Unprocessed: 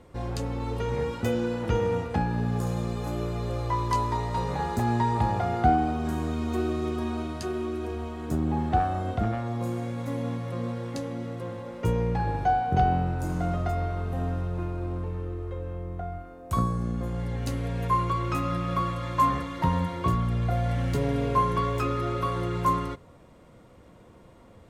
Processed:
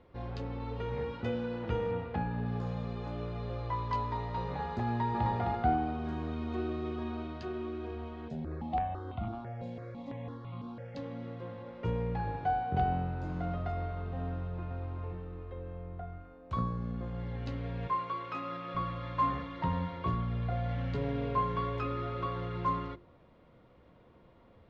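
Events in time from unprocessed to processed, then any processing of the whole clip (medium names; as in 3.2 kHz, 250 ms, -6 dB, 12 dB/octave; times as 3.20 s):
1.91–2.46 s: low-pass 4.1 kHz
4.88–5.29 s: echo throw 260 ms, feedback 15%, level -2.5 dB
8.28–10.97 s: stepped phaser 6 Hz 320–1700 Hz
14.30–14.72 s: echo throw 400 ms, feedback 45%, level -6 dB
16.05–16.91 s: band-stop 710 Hz, Q 18
17.87–18.75 s: Bessel high-pass 330 Hz
whole clip: low-pass 4.2 kHz 24 dB/octave; hum notches 50/100/150/200/250/300/350 Hz; trim -7 dB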